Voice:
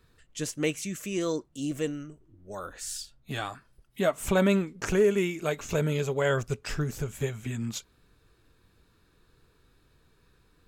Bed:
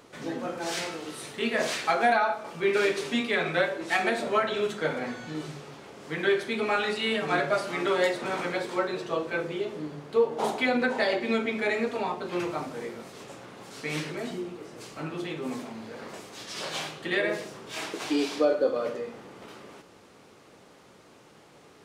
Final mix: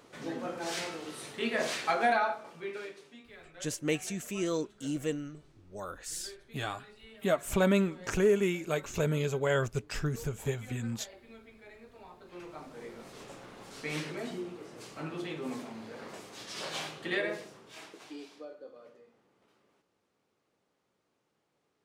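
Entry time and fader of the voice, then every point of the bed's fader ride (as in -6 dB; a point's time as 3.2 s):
3.25 s, -2.5 dB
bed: 2.25 s -4 dB
3.18 s -26 dB
11.8 s -26 dB
13.14 s -4 dB
17.12 s -4 dB
18.54 s -24 dB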